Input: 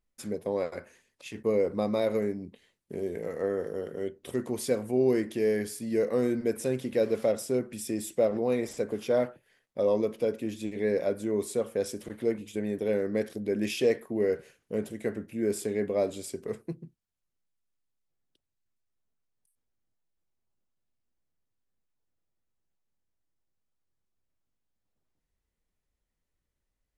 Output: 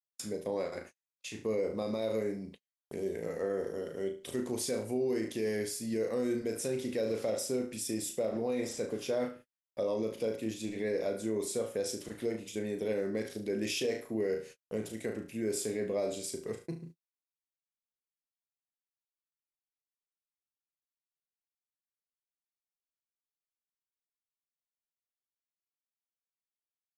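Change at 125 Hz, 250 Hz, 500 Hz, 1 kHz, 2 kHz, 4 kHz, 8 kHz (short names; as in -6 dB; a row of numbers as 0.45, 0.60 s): -5.0, -5.0, -5.5, -5.5, -3.5, +1.0, +2.0 dB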